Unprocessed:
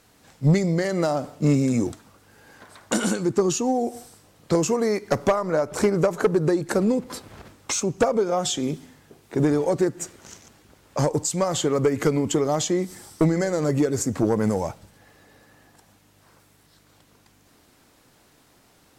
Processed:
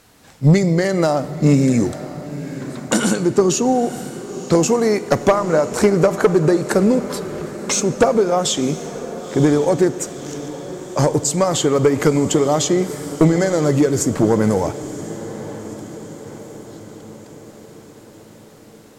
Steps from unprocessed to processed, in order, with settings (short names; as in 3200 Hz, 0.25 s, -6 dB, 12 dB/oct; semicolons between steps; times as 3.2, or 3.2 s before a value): diffused feedback echo 0.981 s, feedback 58%, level -14.5 dB; on a send at -16 dB: reverb RT60 3.2 s, pre-delay 31 ms; on the sum: gain +6 dB